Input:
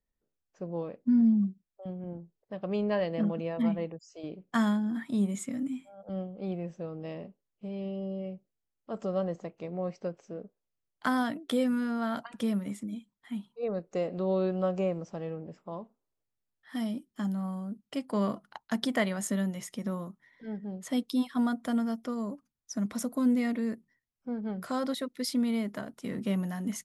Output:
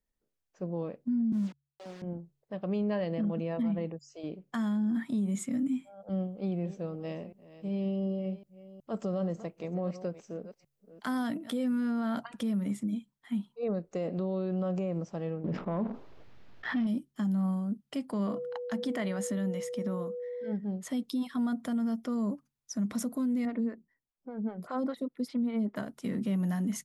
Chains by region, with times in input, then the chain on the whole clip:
0:01.32–0:02.02: hold until the input has moved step −43.5 dBFS + three-way crossover with the lows and the highs turned down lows −22 dB, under 240 Hz, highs −21 dB, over 7,000 Hz
0:06.22–0:11.51: delay that plays each chunk backwards 369 ms, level −14 dB + high-shelf EQ 6,000 Hz +6.5 dB
0:15.44–0:16.87: leveller curve on the samples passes 2 + high-frequency loss of the air 270 metres + envelope flattener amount 70%
0:18.26–0:20.51: high-pass filter 200 Hz 6 dB per octave + high-shelf EQ 8,300 Hz −7.5 dB + steady tone 490 Hz −35 dBFS
0:23.45–0:25.76: low-pass filter 2,300 Hz 6 dB per octave + phaser with staggered stages 5 Hz
whole clip: hum removal 70.16 Hz, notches 2; dynamic equaliser 200 Hz, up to +6 dB, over −40 dBFS, Q 0.87; brickwall limiter −24.5 dBFS

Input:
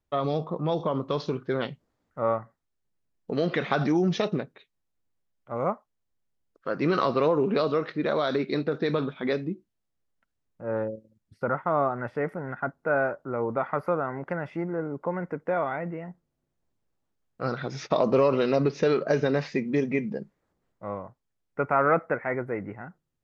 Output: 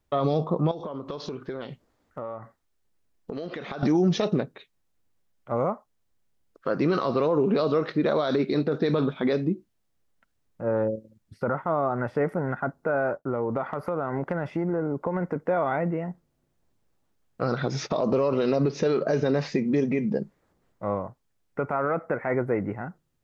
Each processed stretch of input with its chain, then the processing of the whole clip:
0:00.71–0:03.83: parametric band 150 Hz −6 dB 0.8 octaves + downward compressor 8 to 1, threshold −37 dBFS
0:13.17–0:15.36: downward expander −53 dBFS + downward compressor 5 to 1, threshold −29 dBFS
whole clip: downward compressor 3 to 1, threshold −25 dBFS; brickwall limiter −21 dBFS; dynamic equaliser 2,100 Hz, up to −5 dB, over −51 dBFS, Q 0.88; level +7 dB

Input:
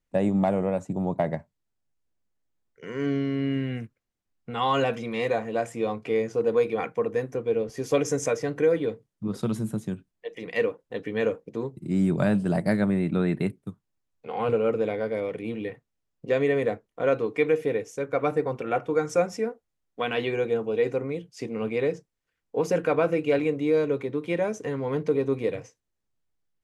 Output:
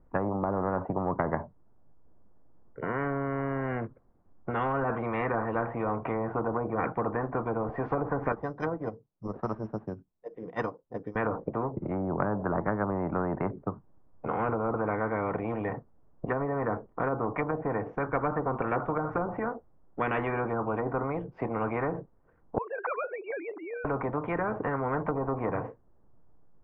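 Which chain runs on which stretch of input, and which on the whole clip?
0:08.32–0:11.16: low-pass filter 8,600 Hz + bad sample-rate conversion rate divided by 8×, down none, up zero stuff + expander for the loud parts 2.5 to 1, over −24 dBFS
0:22.58–0:23.85: three sine waves on the formant tracks + high-pass filter 1,100 Hz
whole clip: low-pass filter 1,100 Hz 24 dB per octave; treble cut that deepens with the level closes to 630 Hz, closed at −19 dBFS; every bin compressed towards the loudest bin 4 to 1

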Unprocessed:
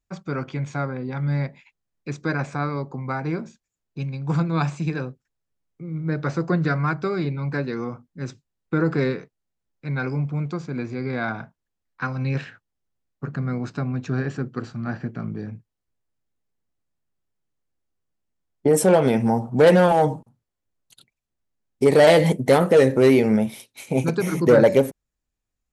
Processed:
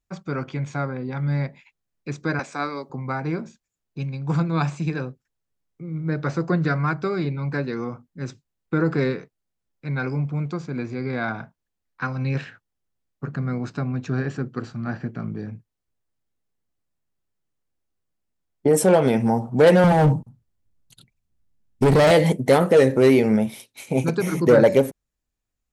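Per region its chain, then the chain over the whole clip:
0:02.39–0:02.90: high-pass filter 210 Hz 24 dB per octave + high-shelf EQ 3,000 Hz +11.5 dB + expander for the loud parts, over −35 dBFS
0:19.84–0:22.11: bass and treble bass +13 dB, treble 0 dB + hard clipping −12.5 dBFS
whole clip: no processing

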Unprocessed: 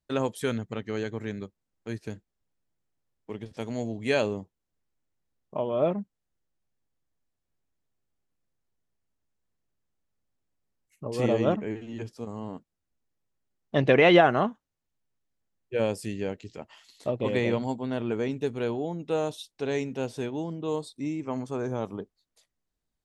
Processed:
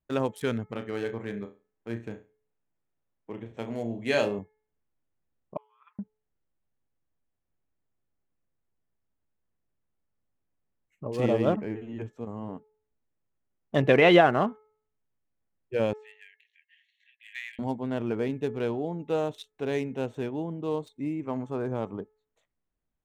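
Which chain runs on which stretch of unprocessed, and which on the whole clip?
0:00.71–0:04.39: low-shelf EQ 150 Hz −6.5 dB + flutter between parallel walls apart 5.9 metres, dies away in 0.29 s
0:05.57–0:05.99: Butterworth high-pass 1,000 Hz 72 dB per octave + noise gate −39 dBFS, range −23 dB
0:15.93–0:17.59: linear-phase brick-wall high-pass 1,600 Hz + high-frequency loss of the air 230 metres
whole clip: adaptive Wiener filter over 9 samples; hum removal 430 Hz, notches 5

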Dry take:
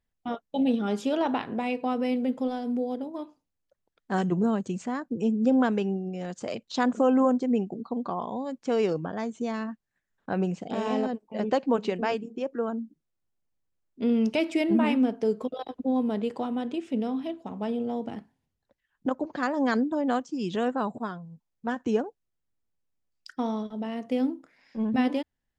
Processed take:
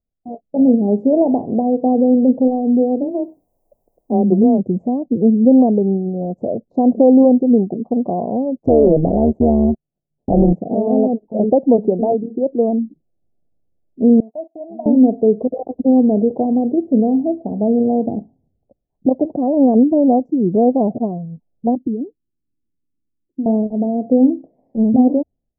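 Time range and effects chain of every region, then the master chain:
0:03.00–0:04.57: frequency shifter +18 Hz + background noise violet −44 dBFS
0:08.57–0:10.53: leveller curve on the samples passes 3 + amplitude modulation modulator 150 Hz, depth 70%
0:14.20–0:14.86: one scale factor per block 7 bits + noise gate −31 dBFS, range −23 dB + formant resonators in series a
0:21.75–0:23.46: downward compressor 2 to 1, threshold −28 dBFS + transistor ladder low-pass 350 Hz, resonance 50%
whole clip: elliptic low-pass filter 700 Hz, stop band 50 dB; automatic gain control gain up to 15.5 dB

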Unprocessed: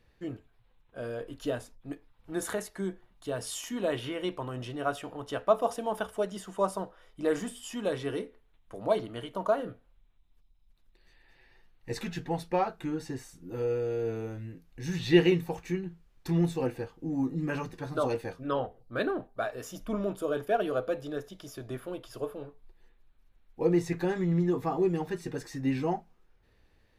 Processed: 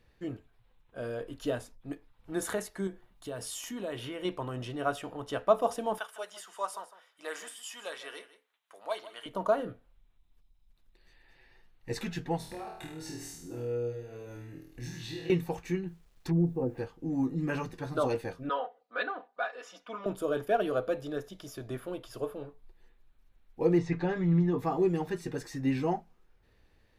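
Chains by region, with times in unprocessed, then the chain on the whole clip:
0:02.87–0:04.25: high-shelf EQ 11,000 Hz +5 dB + downward compressor 2 to 1, threshold −38 dBFS
0:05.98–0:09.26: high-pass filter 1,000 Hz + single-tap delay 155 ms −15 dB
0:12.37–0:15.30: bass and treble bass 0 dB, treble +4 dB + downward compressor 12 to 1, threshold −40 dBFS + flutter between parallel walls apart 4.3 metres, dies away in 0.68 s
0:15.87–0:16.78: treble cut that deepens with the level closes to 440 Hz, closed at −24.5 dBFS + bit-depth reduction 12 bits, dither none
0:18.49–0:20.06: band-pass filter 740–3,700 Hz + comb filter 4.1 ms, depth 86%
0:23.78–0:24.59: high-frequency loss of the air 140 metres + comb filter 6.8 ms, depth 45%
whole clip: no processing

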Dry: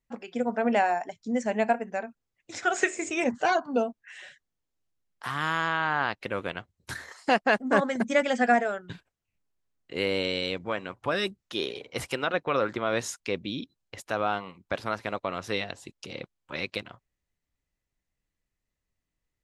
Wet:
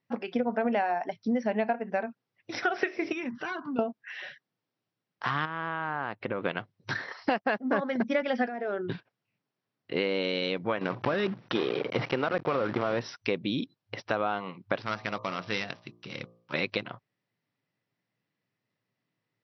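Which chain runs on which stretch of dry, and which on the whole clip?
0:03.12–0:03.79: flat-topped bell 610 Hz −12.5 dB 1.1 octaves + notch filter 4,400 Hz, Q 9.5 + downward compressor 4 to 1, threshold −39 dBFS
0:05.45–0:06.45: downward compressor 5 to 1, threshold −31 dBFS + parametric band 6,800 Hz −12 dB 2.3 octaves
0:08.47–0:08.92: parametric band 350 Hz +14 dB 0.57 octaves + downward compressor 16 to 1, threshold −32 dBFS
0:10.81–0:13.01: one scale factor per block 3 bits + head-to-tape spacing loss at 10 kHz 24 dB + envelope flattener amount 50%
0:14.82–0:16.54: gap after every zero crossing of 0.094 ms + parametric band 490 Hz −9.5 dB 2.7 octaves + hum removal 57.65 Hz, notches 21
whole clip: brick-wall band-pass 100–5,900 Hz; high-shelf EQ 4,500 Hz −8.5 dB; downward compressor, threshold −31 dBFS; level +6.5 dB

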